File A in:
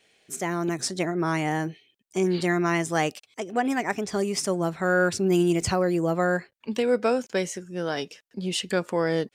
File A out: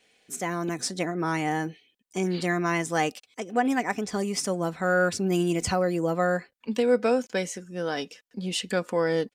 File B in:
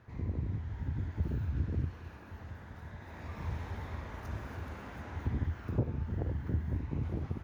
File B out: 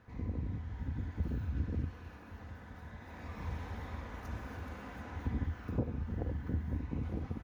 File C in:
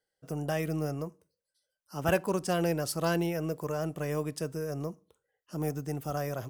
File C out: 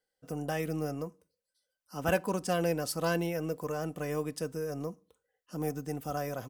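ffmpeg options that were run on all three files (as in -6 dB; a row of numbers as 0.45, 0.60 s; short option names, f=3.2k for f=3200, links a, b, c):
-af "aecho=1:1:4:0.36,volume=-1.5dB"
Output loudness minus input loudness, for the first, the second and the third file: -1.0, -2.5, -1.5 LU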